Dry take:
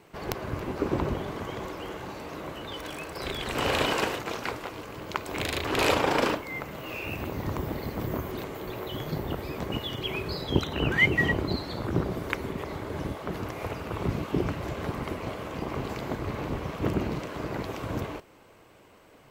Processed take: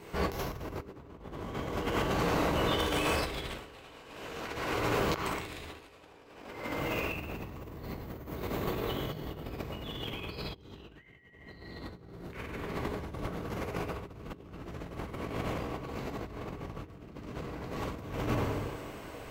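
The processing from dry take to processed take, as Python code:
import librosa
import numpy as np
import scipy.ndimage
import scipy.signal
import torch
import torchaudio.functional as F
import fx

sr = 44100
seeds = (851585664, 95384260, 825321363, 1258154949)

y = fx.low_shelf(x, sr, hz=61.0, db=7.5)
y = fx.rev_plate(y, sr, seeds[0], rt60_s=1.9, hf_ratio=0.9, predelay_ms=0, drr_db=-6.0)
y = fx.over_compress(y, sr, threshold_db=-31.0, ratio=-0.5)
y = y * 10.0 ** (-5.0 / 20.0)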